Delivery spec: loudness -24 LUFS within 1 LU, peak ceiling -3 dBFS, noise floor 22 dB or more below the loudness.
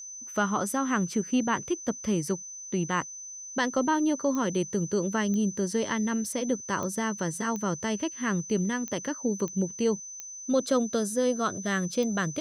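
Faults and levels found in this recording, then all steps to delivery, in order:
clicks found 8; steady tone 6.1 kHz; tone level -39 dBFS; loudness -28.5 LUFS; peak level -13.5 dBFS; loudness target -24.0 LUFS
-> de-click; band-stop 6.1 kHz, Q 30; trim +4.5 dB

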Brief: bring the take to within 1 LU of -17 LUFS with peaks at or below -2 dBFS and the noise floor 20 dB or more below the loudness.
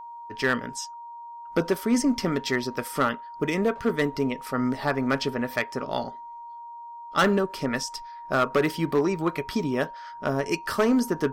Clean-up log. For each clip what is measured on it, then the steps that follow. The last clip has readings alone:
clipped samples 0.7%; clipping level -15.0 dBFS; steady tone 940 Hz; tone level -38 dBFS; loudness -26.5 LUFS; peak level -15.0 dBFS; loudness target -17.0 LUFS
-> clip repair -15 dBFS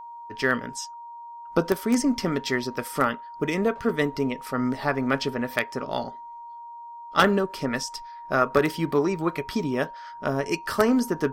clipped samples 0.0%; steady tone 940 Hz; tone level -38 dBFS
-> band-stop 940 Hz, Q 30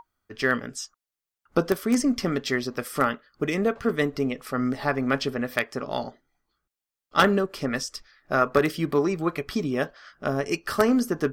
steady tone not found; loudness -26.0 LUFS; peak level -6.0 dBFS; loudness target -17.0 LUFS
-> trim +9 dB; peak limiter -2 dBFS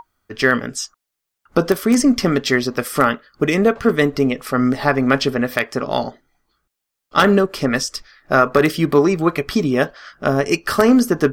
loudness -17.5 LUFS; peak level -2.0 dBFS; noise floor -80 dBFS

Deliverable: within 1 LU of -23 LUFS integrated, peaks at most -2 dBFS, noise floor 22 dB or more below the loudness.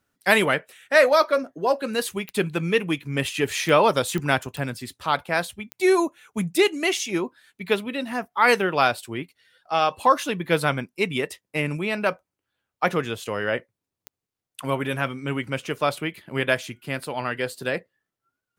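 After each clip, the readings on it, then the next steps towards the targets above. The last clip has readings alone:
clicks found 6; loudness -24.0 LUFS; peak level -4.0 dBFS; loudness target -23.0 LUFS
-> de-click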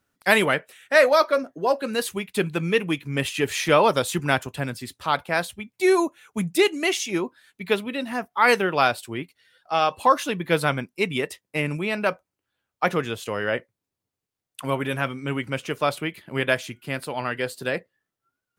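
clicks found 0; loudness -24.0 LUFS; peak level -4.0 dBFS; loudness target -23.0 LUFS
-> trim +1 dB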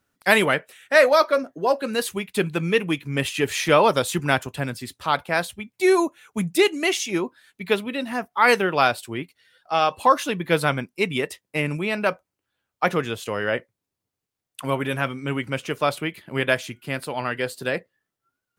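loudness -23.0 LUFS; peak level -3.0 dBFS; noise floor -85 dBFS

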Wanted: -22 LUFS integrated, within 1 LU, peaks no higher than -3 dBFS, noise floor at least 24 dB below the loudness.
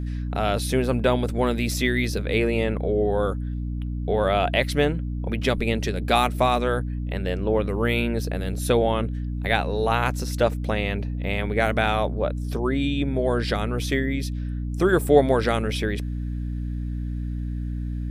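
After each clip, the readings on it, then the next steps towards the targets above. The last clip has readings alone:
hum 60 Hz; highest harmonic 300 Hz; hum level -26 dBFS; loudness -24.0 LUFS; peak level -4.5 dBFS; loudness target -22.0 LUFS
-> hum notches 60/120/180/240/300 Hz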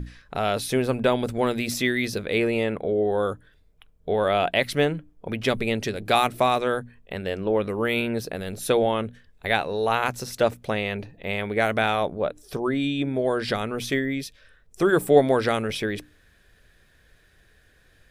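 hum not found; loudness -24.5 LUFS; peak level -4.0 dBFS; loudness target -22.0 LUFS
-> trim +2.5 dB; peak limiter -3 dBFS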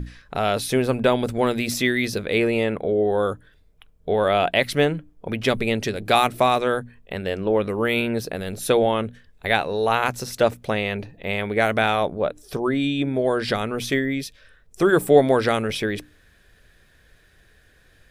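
loudness -22.0 LUFS; peak level -3.0 dBFS; noise floor -57 dBFS

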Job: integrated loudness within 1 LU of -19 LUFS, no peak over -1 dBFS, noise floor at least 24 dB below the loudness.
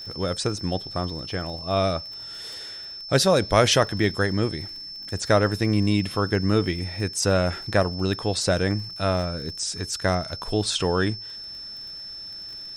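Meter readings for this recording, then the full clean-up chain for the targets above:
tick rate 28 per s; steady tone 5.3 kHz; tone level -35 dBFS; loudness -24.5 LUFS; peak level -5.0 dBFS; loudness target -19.0 LUFS
-> de-click; band-stop 5.3 kHz, Q 30; trim +5.5 dB; peak limiter -1 dBFS

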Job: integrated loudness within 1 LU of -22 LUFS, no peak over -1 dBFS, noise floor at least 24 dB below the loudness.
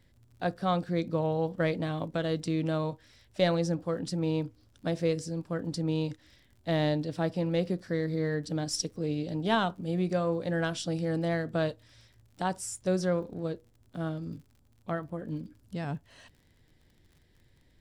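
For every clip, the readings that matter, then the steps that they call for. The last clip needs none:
tick rate 45 per s; loudness -31.5 LUFS; peak level -13.5 dBFS; loudness target -22.0 LUFS
-> de-click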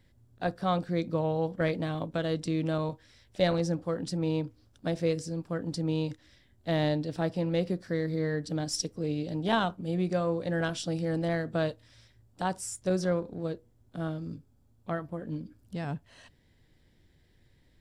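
tick rate 0.11 per s; loudness -31.5 LUFS; peak level -13.5 dBFS; loudness target -22.0 LUFS
-> trim +9.5 dB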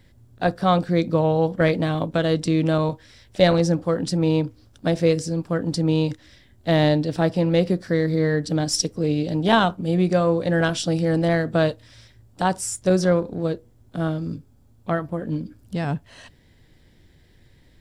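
loudness -22.0 LUFS; peak level -4.0 dBFS; noise floor -55 dBFS

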